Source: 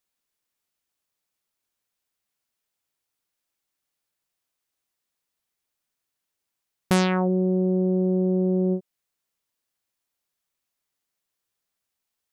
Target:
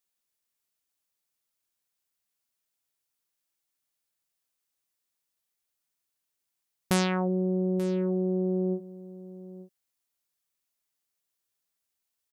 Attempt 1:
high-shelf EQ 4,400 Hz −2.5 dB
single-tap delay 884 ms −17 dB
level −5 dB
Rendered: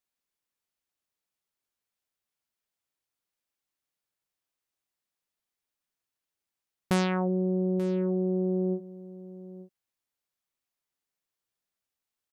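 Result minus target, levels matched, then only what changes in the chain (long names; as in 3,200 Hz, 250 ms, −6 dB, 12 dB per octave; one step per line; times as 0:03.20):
8,000 Hz band −6.0 dB
change: high-shelf EQ 4,400 Hz +6 dB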